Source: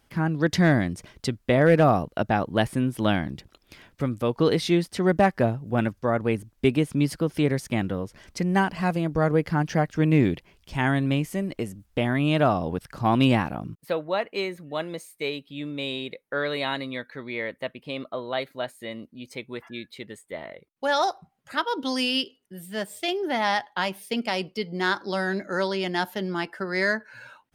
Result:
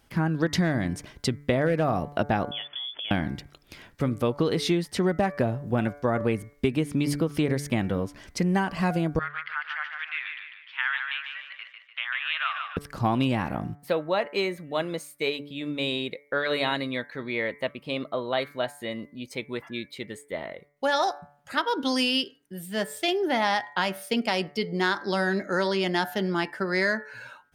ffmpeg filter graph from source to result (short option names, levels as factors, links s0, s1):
-filter_complex "[0:a]asettb=1/sr,asplit=3[s0][s1][s2];[s0]atrim=end=2.514[s3];[s1]atrim=start=2.51:end=3.11,asetpts=PTS-STARTPTS,afade=t=in:d=0.004:c=qsin,afade=t=out:st=0.596:d=0.004:c=qsin,highpass=f=110:w=0.5412,highpass=f=110:w=1.3066,acompressor=threshold=0.0178:ratio=5:attack=3.2:release=140:knee=1:detection=peak,lowpass=f=3100:t=q:w=0.5098,lowpass=f=3100:t=q:w=0.6013,lowpass=f=3100:t=q:w=0.9,lowpass=f=3100:t=q:w=2.563,afreqshift=-3600[s4];[s2]atrim=start=3.106[s5];[s3][s4]acrossfade=d=0.004:c1=hsin:c2=qsin[s6];[s6][s5]acrossfade=d=0.004:c1=qsin:c2=hsin,asettb=1/sr,asplit=3[s7][s8][s9];[s7]atrim=end=9.194[s10];[s8]atrim=start=9.19:end=12.77,asetpts=PTS-STARTPTS,afade=t=in:d=0.004:c=qsin,afade=t=out:st=3.576:d=0.004:c=qsin,asuperpass=centerf=2100:order=8:qfactor=0.89,aecho=1:1:148|296|444|592|740:0.501|0.226|0.101|0.0457|0.0206,atrim=end_sample=157878[s11];[s9]atrim=start=12.766[s12];[s10][s11]acrossfade=d=0.004:c1=hsin:c2=qsin[s13];[s13][s12]acrossfade=d=0.004:c1=qsin:c2=hsin,bandreject=f=144.5:t=h:w=4,bandreject=f=289:t=h:w=4,bandreject=f=433.5:t=h:w=4,bandreject=f=578:t=h:w=4,bandreject=f=722.5:t=h:w=4,bandreject=f=867:t=h:w=4,bandreject=f=1011.5:t=h:w=4,bandreject=f=1156:t=h:w=4,bandreject=f=1300.5:t=h:w=4,bandreject=f=1445:t=h:w=4,bandreject=f=1589.5:t=h:w=4,bandreject=f=1734:t=h:w=4,bandreject=f=1878.5:t=h:w=4,bandreject=f=2023:t=h:w=4,bandreject=f=2167.5:t=h:w=4,bandreject=f=2312:t=h:w=4,acompressor=threshold=0.0794:ratio=10,volume=1.33"